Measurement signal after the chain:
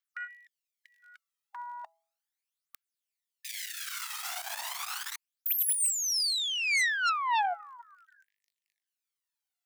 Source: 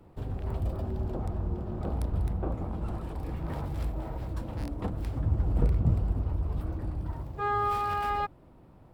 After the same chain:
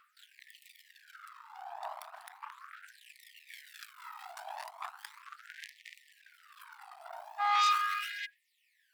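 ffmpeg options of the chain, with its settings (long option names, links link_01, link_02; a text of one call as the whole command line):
ffmpeg -i in.wav -af "aphaser=in_gain=1:out_gain=1:delay=1.6:decay=0.64:speed=0.36:type=triangular,asoftclip=type=hard:threshold=-16dB,bandreject=frequency=165.1:width_type=h:width=4,bandreject=frequency=330.2:width_type=h:width=4,bandreject=frequency=495.3:width_type=h:width=4,bandreject=frequency=660.4:width_type=h:width=4,bandreject=frequency=825.5:width_type=h:width=4,aeval=exprs='0.178*(cos(1*acos(clip(val(0)/0.178,-1,1)))-cos(1*PI/2))+0.0501*(cos(5*acos(clip(val(0)/0.178,-1,1)))-cos(5*PI/2))+0.0447*(cos(6*acos(clip(val(0)/0.178,-1,1)))-cos(6*PI/2))':channel_layout=same,afftfilt=real='re*gte(b*sr/1024,600*pow(1800/600,0.5+0.5*sin(2*PI*0.38*pts/sr)))':imag='im*gte(b*sr/1024,600*pow(1800/600,0.5+0.5*sin(2*PI*0.38*pts/sr)))':win_size=1024:overlap=0.75,volume=-5.5dB" out.wav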